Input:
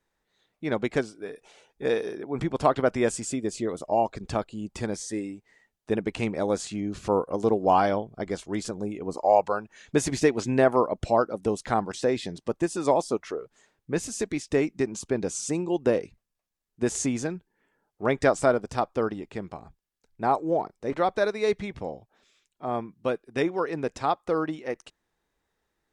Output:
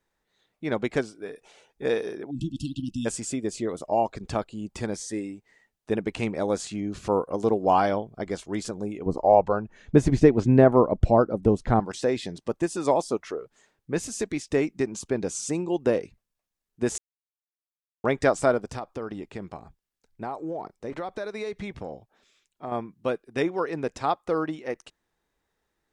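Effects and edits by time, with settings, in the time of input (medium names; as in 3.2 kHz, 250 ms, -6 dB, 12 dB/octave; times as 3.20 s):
2.31–3.06 s: spectral selection erased 330–2600 Hz
9.06–11.80 s: tilt EQ -3.5 dB/octave
16.98–18.04 s: mute
18.71–22.72 s: compression, threshold -29 dBFS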